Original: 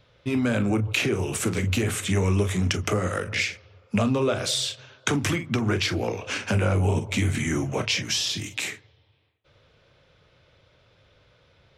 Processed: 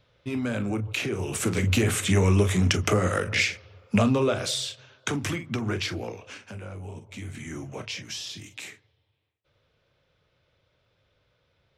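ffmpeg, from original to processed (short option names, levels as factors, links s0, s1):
-af "volume=2.66,afade=t=in:st=1.1:d=0.67:silence=0.446684,afade=t=out:st=3.97:d=0.69:silence=0.473151,afade=t=out:st=5.84:d=0.6:silence=0.251189,afade=t=in:st=7.06:d=0.6:silence=0.473151"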